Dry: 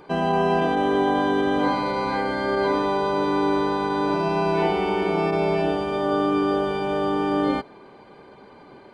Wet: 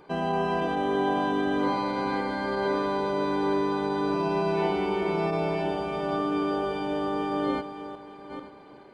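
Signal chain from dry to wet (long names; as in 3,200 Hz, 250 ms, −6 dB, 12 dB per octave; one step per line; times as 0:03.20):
feedback delay that plays each chunk backwards 442 ms, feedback 45%, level −10 dB
level −5.5 dB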